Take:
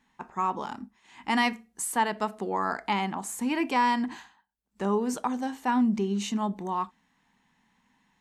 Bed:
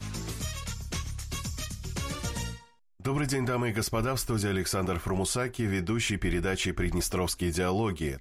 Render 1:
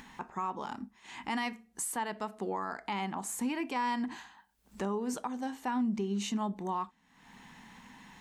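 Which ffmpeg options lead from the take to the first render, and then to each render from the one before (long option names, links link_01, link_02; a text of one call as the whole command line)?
ffmpeg -i in.wav -af "alimiter=level_in=1dB:limit=-24dB:level=0:latency=1:release=435,volume=-1dB,acompressor=mode=upward:threshold=-39dB:ratio=2.5" out.wav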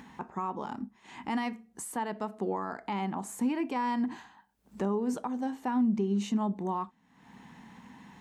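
ffmpeg -i in.wav -af "highpass=75,tiltshelf=frequency=1100:gain=5" out.wav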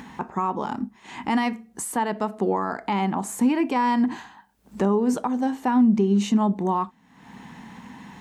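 ffmpeg -i in.wav -af "volume=9dB" out.wav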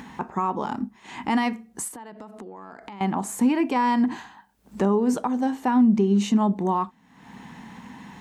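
ffmpeg -i in.wav -filter_complex "[0:a]asettb=1/sr,asplit=3[link_01][link_02][link_03];[link_01]atrim=end=1.884[link_04];[link_02]atrim=start=1.88:end=3.01,asetpts=PTS-STARTPTS,afade=type=in:duration=0.004:curve=qsin,afade=type=out:start_time=1.126:duration=0.004:curve=qsin,acompressor=threshold=-36dB:ratio=16:attack=3.2:release=140:knee=1:detection=peak[link_05];[link_03]atrim=start=3.006[link_06];[link_04][link_05]acrossfade=duration=0.004:curve1=hsin:curve2=qsin[link_07];[link_07][link_06]acrossfade=duration=0.004:curve1=qsin:curve2=hsin" out.wav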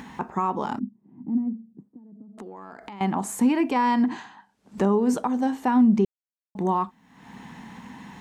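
ffmpeg -i in.wav -filter_complex "[0:a]asettb=1/sr,asplit=3[link_01][link_02][link_03];[link_01]atrim=end=0.794[link_04];[link_02]atrim=start=0.79:end=2.38,asetpts=PTS-STARTPTS,afade=type=in:duration=0.004:curve=qsin,afade=type=out:start_time=1.586:duration=0.004:curve=qsin,asuperpass=centerf=190:order=4:qfactor=1.2[link_05];[link_03]atrim=start=2.376[link_06];[link_04][link_05]acrossfade=duration=0.004:curve1=hsin:curve2=qsin[link_07];[link_07][link_06]acrossfade=duration=0.004:curve1=qsin:curve2=hsin,asettb=1/sr,asplit=3[link_08][link_09][link_10];[link_08]atrim=end=3.714[link_11];[link_09]atrim=start=3.71:end=4.78,asetpts=PTS-STARTPTS,afade=type=in:duration=0.004:curve=qsin,afade=type=out:start_time=1.066:duration=0.004:curve=qsin,highpass=120,lowpass=7700[link_12];[link_10]atrim=start=4.776[link_13];[link_11][link_12]acrossfade=duration=0.004:curve1=hsin:curve2=qsin[link_14];[link_14][link_13]acrossfade=duration=0.004:curve1=qsin:curve2=hsin,asplit=3[link_15][link_16][link_17];[link_15]atrim=end=6.05,asetpts=PTS-STARTPTS,afade=type=out:start_time=6.046:duration=0.004:curve=hsin[link_18];[link_16]atrim=start=6.05:end=6.55,asetpts=PTS-STARTPTS,volume=0[link_19];[link_17]atrim=start=6.55,asetpts=PTS-STARTPTS,afade=type=in:duration=0.004:curve=hsin[link_20];[link_18][link_19][link_20]concat=n=3:v=0:a=1" out.wav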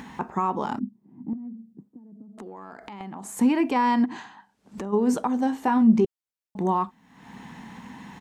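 ffmpeg -i in.wav -filter_complex "[0:a]asettb=1/sr,asplit=3[link_01][link_02][link_03];[link_01]atrim=end=1.334[link_04];[link_02]atrim=start=1.33:end=3.37,asetpts=PTS-STARTPTS,afade=type=in:duration=0.004:curve=qsin,afade=type=out:start_time=2.036:duration=0.004:curve=qsin,acompressor=threshold=-34dB:ratio=8:attack=3.2:release=140:knee=1:detection=peak[link_05];[link_03]atrim=start=3.366[link_06];[link_04][link_05]acrossfade=duration=0.004:curve1=hsin:curve2=qsin[link_07];[link_07][link_06]acrossfade=duration=0.004:curve1=qsin:curve2=hsin,asplit=3[link_08][link_09][link_10];[link_08]afade=type=out:start_time=4.04:duration=0.02[link_11];[link_09]acompressor=threshold=-30dB:ratio=6:attack=3.2:release=140:knee=1:detection=peak,afade=type=in:start_time=4.04:duration=0.02,afade=type=out:start_time=4.92:duration=0.02[link_12];[link_10]afade=type=in:start_time=4.92:duration=0.02[link_13];[link_11][link_12][link_13]amix=inputs=3:normalize=0,asplit=3[link_14][link_15][link_16];[link_14]afade=type=out:start_time=5.64:duration=0.02[link_17];[link_15]asplit=2[link_18][link_19];[link_19]adelay=18,volume=-8dB[link_20];[link_18][link_20]amix=inputs=2:normalize=0,afade=type=in:start_time=5.64:duration=0.02,afade=type=out:start_time=6.04:duration=0.02[link_21];[link_16]afade=type=in:start_time=6.04:duration=0.02[link_22];[link_17][link_21][link_22]amix=inputs=3:normalize=0" out.wav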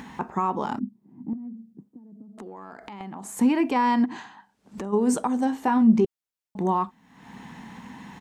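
ffmpeg -i in.wav -filter_complex "[0:a]asettb=1/sr,asplit=3[link_01][link_02][link_03];[link_01]atrim=end=4.844[link_04];[link_02]atrim=start=4.84:end=5.45,asetpts=PTS-STARTPTS,afade=type=in:duration=0.004:curve=qsin,afade=type=out:start_time=0.606:duration=0.004:curve=qsin,equalizer=frequency=8600:width_type=o:width=0.54:gain=9.5[link_05];[link_03]atrim=start=5.446[link_06];[link_04][link_05]acrossfade=duration=0.004:curve1=hsin:curve2=qsin[link_07];[link_07][link_06]acrossfade=duration=0.004:curve1=qsin:curve2=hsin" out.wav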